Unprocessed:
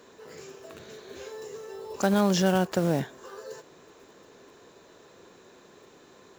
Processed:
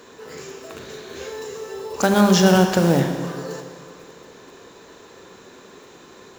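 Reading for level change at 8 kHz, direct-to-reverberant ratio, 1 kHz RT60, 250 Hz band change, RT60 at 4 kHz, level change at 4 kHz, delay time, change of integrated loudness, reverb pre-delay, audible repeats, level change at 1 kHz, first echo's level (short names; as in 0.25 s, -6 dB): +9.5 dB, 5.0 dB, 2.0 s, +8.5 dB, 1.9 s, +9.5 dB, none, +8.0 dB, 29 ms, none, +8.5 dB, none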